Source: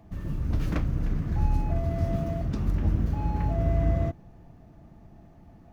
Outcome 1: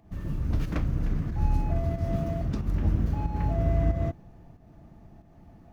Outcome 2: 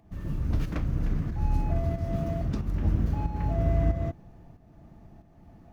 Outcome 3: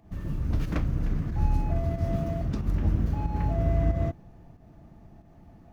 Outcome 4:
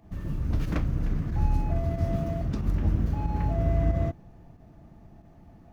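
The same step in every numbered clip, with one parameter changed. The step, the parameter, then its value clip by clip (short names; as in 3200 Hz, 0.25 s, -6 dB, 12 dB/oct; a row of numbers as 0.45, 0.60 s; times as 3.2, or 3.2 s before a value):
pump, release: 226, 428, 148, 70 ms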